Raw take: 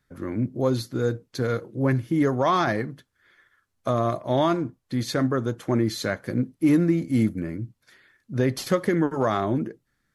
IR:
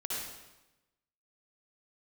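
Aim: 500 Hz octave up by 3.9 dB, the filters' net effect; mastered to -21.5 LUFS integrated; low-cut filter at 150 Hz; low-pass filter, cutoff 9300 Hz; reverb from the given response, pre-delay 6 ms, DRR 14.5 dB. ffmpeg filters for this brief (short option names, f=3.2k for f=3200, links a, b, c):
-filter_complex "[0:a]highpass=150,lowpass=9.3k,equalizer=f=500:t=o:g=5,asplit=2[a][b];[1:a]atrim=start_sample=2205,adelay=6[c];[b][c]afir=irnorm=-1:irlink=0,volume=-18dB[d];[a][d]amix=inputs=2:normalize=0,volume=1.5dB"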